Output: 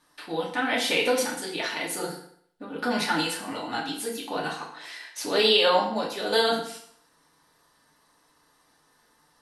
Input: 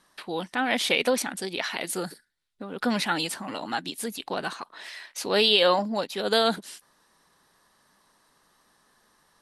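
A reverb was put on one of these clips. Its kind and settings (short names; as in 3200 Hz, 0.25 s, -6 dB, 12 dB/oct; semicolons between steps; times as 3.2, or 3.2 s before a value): FDN reverb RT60 0.64 s, low-frequency decay 0.9×, high-frequency decay 0.85×, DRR -3.5 dB; gain -4.5 dB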